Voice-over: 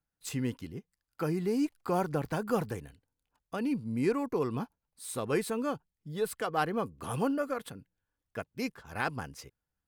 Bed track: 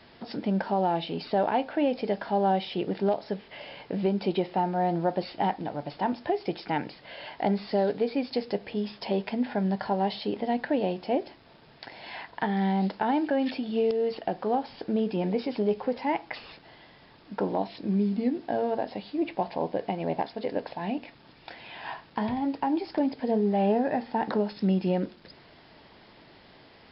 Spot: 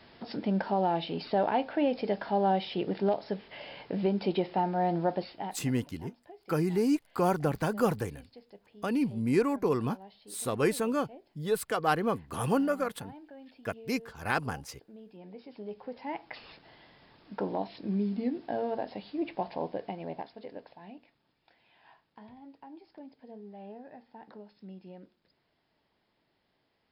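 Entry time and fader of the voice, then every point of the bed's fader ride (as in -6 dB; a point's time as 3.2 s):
5.30 s, +3.0 dB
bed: 5.13 s -2 dB
5.9 s -23.5 dB
15.03 s -23.5 dB
16.49 s -4.5 dB
19.6 s -4.5 dB
21.39 s -22 dB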